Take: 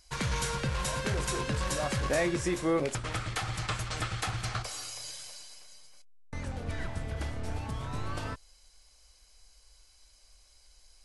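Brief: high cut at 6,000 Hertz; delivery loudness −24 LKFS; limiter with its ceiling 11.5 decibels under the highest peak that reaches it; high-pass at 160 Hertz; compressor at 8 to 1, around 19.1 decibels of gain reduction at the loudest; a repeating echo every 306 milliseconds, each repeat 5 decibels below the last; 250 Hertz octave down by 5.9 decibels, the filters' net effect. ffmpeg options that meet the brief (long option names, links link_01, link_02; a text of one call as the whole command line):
ffmpeg -i in.wav -af "highpass=160,lowpass=6000,equalizer=frequency=250:width_type=o:gain=-8.5,acompressor=threshold=-46dB:ratio=8,alimiter=level_in=19dB:limit=-24dB:level=0:latency=1,volume=-19dB,aecho=1:1:306|612|918|1224|1530|1836|2142:0.562|0.315|0.176|0.0988|0.0553|0.031|0.0173,volume=27.5dB" out.wav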